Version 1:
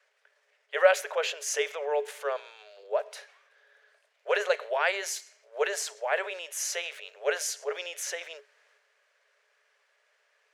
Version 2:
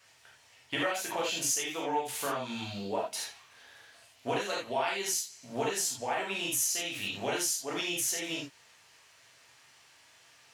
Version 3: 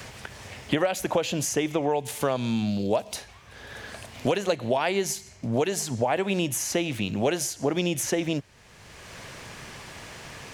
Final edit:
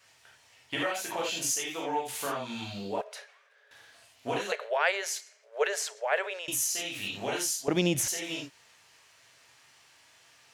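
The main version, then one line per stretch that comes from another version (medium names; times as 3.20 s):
2
3.01–3.71 s: from 1
4.52–6.48 s: from 1
7.68–8.08 s: from 3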